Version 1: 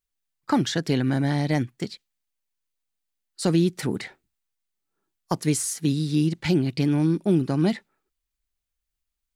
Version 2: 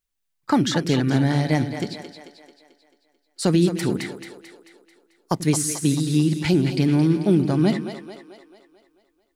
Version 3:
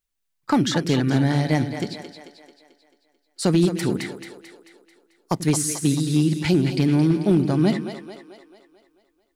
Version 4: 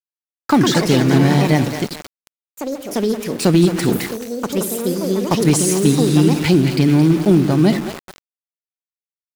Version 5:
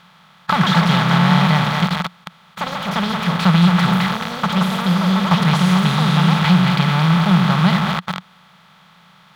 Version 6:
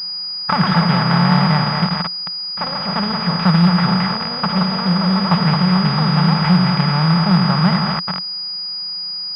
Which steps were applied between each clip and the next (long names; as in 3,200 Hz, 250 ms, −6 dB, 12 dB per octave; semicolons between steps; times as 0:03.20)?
echo with a time of its own for lows and highs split 350 Hz, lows 87 ms, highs 220 ms, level −9 dB; level +2.5 dB
hard clipping −10.5 dBFS, distortion −28 dB
centre clipping without the shift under −31 dBFS; delay with pitch and tempo change per echo 218 ms, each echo +4 semitones, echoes 2, each echo −6 dB; level +5.5 dB
compressor on every frequency bin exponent 0.4; drawn EQ curve 120 Hz 0 dB, 180 Hz +13 dB, 290 Hz −19 dB, 630 Hz +2 dB, 1,300 Hz +14 dB, 1,900 Hz +7 dB, 3,500 Hz +9 dB, 8,600 Hz −14 dB, 14,000 Hz −8 dB; level −10.5 dB
switching amplifier with a slow clock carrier 4,900 Hz